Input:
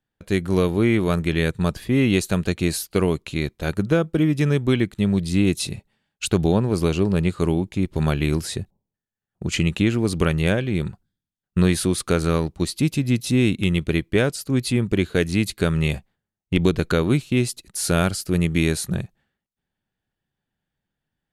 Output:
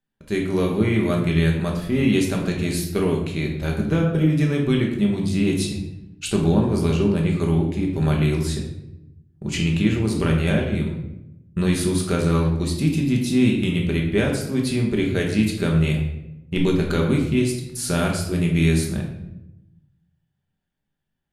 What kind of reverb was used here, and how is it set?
rectangular room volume 280 cubic metres, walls mixed, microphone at 1.2 metres
level −4.5 dB

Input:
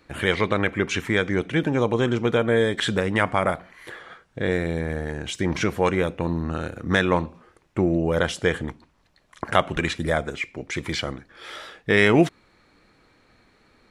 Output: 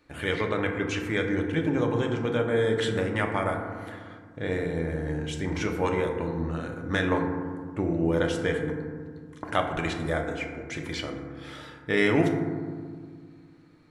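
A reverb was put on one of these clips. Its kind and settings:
feedback delay network reverb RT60 1.8 s, low-frequency decay 1.55×, high-frequency decay 0.3×, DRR 2 dB
level −7.5 dB

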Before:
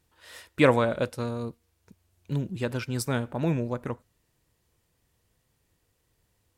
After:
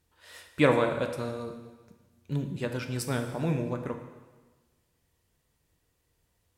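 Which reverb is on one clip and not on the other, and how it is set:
dense smooth reverb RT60 1.3 s, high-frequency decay 1×, DRR 5 dB
level −3 dB

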